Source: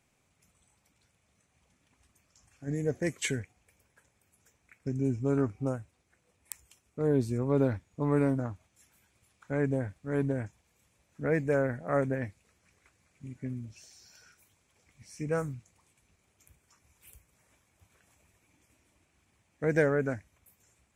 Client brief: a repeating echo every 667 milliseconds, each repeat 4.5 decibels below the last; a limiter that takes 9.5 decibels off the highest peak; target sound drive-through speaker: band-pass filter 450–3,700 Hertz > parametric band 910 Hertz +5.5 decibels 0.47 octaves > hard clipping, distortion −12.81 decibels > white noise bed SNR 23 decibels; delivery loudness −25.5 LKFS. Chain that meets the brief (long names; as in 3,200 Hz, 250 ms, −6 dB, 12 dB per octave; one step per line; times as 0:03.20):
brickwall limiter −21.5 dBFS
band-pass filter 450–3,700 Hz
parametric band 910 Hz +5.5 dB 0.47 octaves
repeating echo 667 ms, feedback 60%, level −4.5 dB
hard clipping −31 dBFS
white noise bed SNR 23 dB
level +15 dB